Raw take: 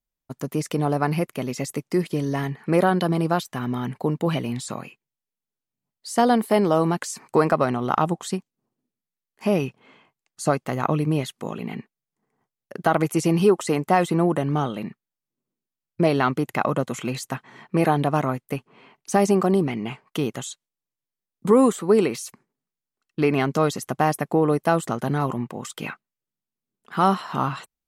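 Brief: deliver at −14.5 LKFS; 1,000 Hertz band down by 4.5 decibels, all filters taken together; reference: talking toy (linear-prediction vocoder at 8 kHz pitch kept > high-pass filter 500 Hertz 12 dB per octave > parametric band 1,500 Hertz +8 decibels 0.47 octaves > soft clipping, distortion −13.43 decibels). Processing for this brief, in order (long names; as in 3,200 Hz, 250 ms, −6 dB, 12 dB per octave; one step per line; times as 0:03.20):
parametric band 1,000 Hz −8 dB
linear-prediction vocoder at 8 kHz pitch kept
high-pass filter 500 Hz 12 dB per octave
parametric band 1,500 Hz +8 dB 0.47 octaves
soft clipping −19.5 dBFS
level +18 dB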